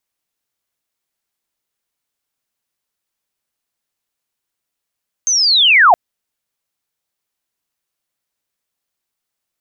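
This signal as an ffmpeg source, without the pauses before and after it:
-f lavfi -i "aevalsrc='pow(10,(-12+8*t/0.67)/20)*sin(2*PI*(6400*t-5760*t*t/(2*0.67)))':d=0.67:s=44100"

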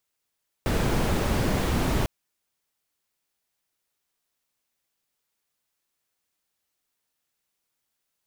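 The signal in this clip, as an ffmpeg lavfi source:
-f lavfi -i "anoisesrc=c=brown:a=0.313:d=1.4:r=44100:seed=1"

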